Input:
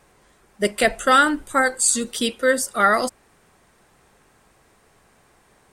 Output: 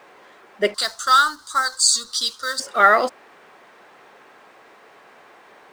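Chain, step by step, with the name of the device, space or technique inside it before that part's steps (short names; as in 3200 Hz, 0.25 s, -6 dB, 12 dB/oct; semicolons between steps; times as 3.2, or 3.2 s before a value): phone line with mismatched companding (BPF 390–3400 Hz; G.711 law mismatch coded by mu); 0.74–2.6 EQ curve 100 Hz 0 dB, 150 Hz -13 dB, 450 Hz -21 dB, 690 Hz -17 dB, 1200 Hz +1 dB, 2500 Hz -21 dB, 4300 Hz +14 dB, 9700 Hz +11 dB, 14000 Hz +6 dB; gain +3.5 dB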